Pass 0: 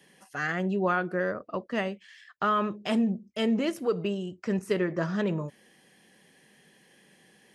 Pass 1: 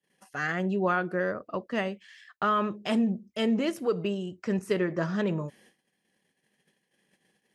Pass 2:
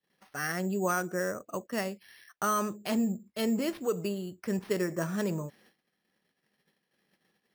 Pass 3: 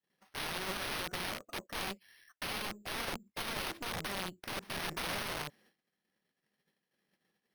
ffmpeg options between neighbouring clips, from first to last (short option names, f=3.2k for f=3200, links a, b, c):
-af "agate=range=-27dB:threshold=-57dB:ratio=16:detection=peak"
-af "acrusher=samples=6:mix=1:aa=0.000001,volume=-3dB"
-af "aeval=exprs='(mod(39.8*val(0)+1,2)-1)/39.8':c=same,aeval=exprs='0.0251*(cos(1*acos(clip(val(0)/0.0251,-1,1)))-cos(1*PI/2))+0.00251*(cos(2*acos(clip(val(0)/0.0251,-1,1)))-cos(2*PI/2))+0.00891*(cos(3*acos(clip(val(0)/0.0251,-1,1)))-cos(3*PI/2))+0.00316*(cos(5*acos(clip(val(0)/0.0251,-1,1)))-cos(5*PI/2))+0.000355*(cos(7*acos(clip(val(0)/0.0251,-1,1)))-cos(7*PI/2))':c=same"